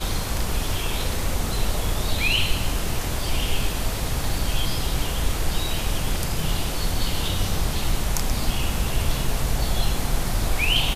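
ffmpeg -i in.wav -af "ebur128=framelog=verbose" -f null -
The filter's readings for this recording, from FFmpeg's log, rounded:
Integrated loudness:
  I:         -25.6 LUFS
  Threshold: -35.6 LUFS
Loudness range:
  LRA:         1.3 LU
  Threshold: -45.7 LUFS
  LRA low:   -26.3 LUFS
  LRA high:  -25.1 LUFS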